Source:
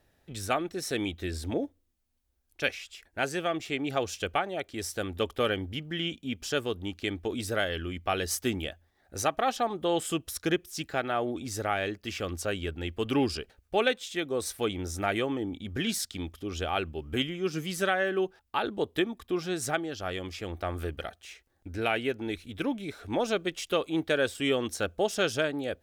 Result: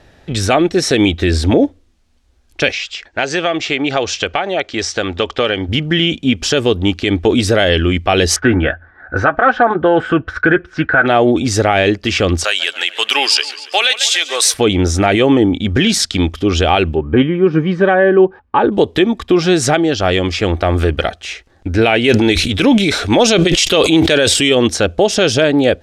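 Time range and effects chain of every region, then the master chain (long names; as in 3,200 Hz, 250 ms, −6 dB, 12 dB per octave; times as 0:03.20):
0:02.72–0:05.69: low-pass filter 7,100 Hz 24 dB per octave + low-shelf EQ 350 Hz −9.5 dB + downward compressor 2 to 1, threshold −35 dBFS
0:08.36–0:11.06: low-pass with resonance 1,500 Hz, resonance Q 11 + notch comb filter 200 Hz
0:12.44–0:14.54: high-pass filter 790 Hz + spectral tilt +4 dB per octave + feedback echo with a swinging delay time 140 ms, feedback 54%, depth 118 cents, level −17.5 dB
0:16.95–0:18.72: Chebyshev low-pass filter 1,300 Hz + notch comb filter 680 Hz
0:22.04–0:24.55: high-shelf EQ 2,500 Hz +9.5 dB + level that may fall only so fast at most 63 dB per second
whole clip: low-pass filter 6,000 Hz 12 dB per octave; dynamic equaliser 1,300 Hz, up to −6 dB, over −43 dBFS, Q 1.7; boost into a limiter +22.5 dB; level −1 dB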